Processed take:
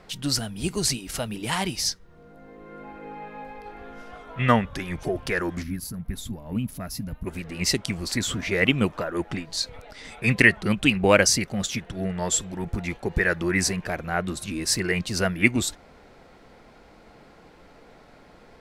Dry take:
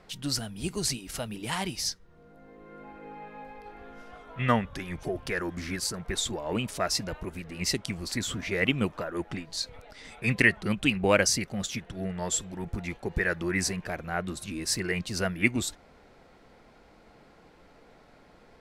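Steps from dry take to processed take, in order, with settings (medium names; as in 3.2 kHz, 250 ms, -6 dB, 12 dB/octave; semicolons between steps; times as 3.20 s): time-frequency box 5.63–7.26 s, 280–9900 Hz -15 dB; trim +5 dB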